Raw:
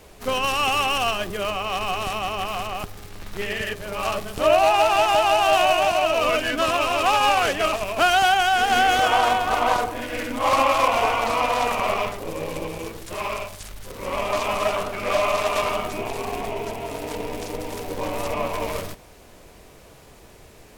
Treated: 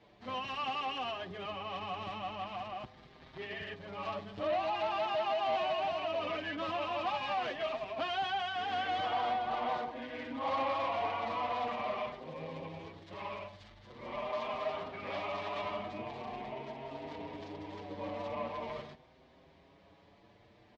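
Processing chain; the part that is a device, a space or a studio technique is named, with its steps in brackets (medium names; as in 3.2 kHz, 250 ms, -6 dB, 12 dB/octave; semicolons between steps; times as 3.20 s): barber-pole flanger into a guitar amplifier (endless flanger 6.5 ms +0.44 Hz; saturation -18.5 dBFS, distortion -14 dB; cabinet simulation 96–3900 Hz, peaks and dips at 440 Hz -6 dB, 1.4 kHz -7 dB, 2.6 kHz -6 dB); trim -7.5 dB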